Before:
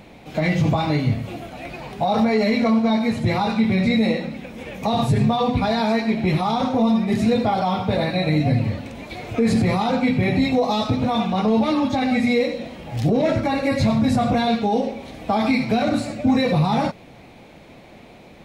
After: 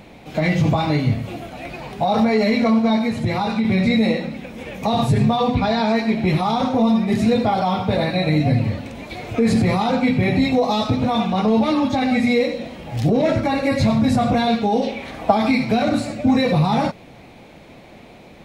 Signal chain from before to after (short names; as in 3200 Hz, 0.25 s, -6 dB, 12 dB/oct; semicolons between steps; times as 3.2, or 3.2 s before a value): 3.01–3.65 compressor 3:1, threshold -19 dBFS, peak gain reduction 4.5 dB; 5.55–5.96 LPF 6900 Hz 12 dB/oct; 14.81–15.3 bell 4500 Hz -> 760 Hz +11 dB 1.3 oct; gain +1.5 dB